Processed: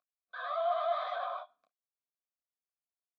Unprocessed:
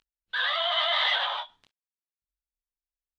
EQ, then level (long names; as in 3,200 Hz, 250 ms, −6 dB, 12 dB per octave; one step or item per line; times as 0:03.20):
formant filter a
low-shelf EQ 490 Hz +3.5 dB
phaser with its sweep stopped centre 570 Hz, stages 8
+6.0 dB